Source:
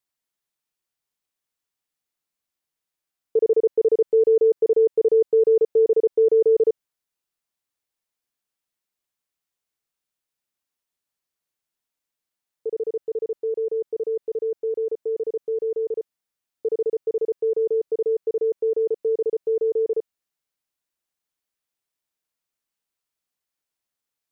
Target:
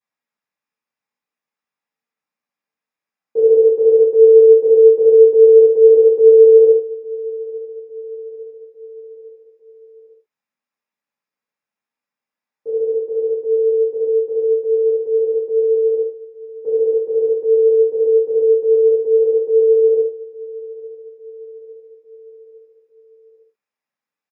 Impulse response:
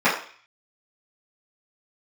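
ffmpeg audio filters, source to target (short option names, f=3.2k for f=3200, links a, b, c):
-filter_complex "[0:a]aecho=1:1:854|1708|2562|3416:0.0891|0.0499|0.0279|0.0157[a];[1:a]atrim=start_sample=2205,atrim=end_sample=6174[b];[a][b]afir=irnorm=-1:irlink=0,volume=-16.5dB"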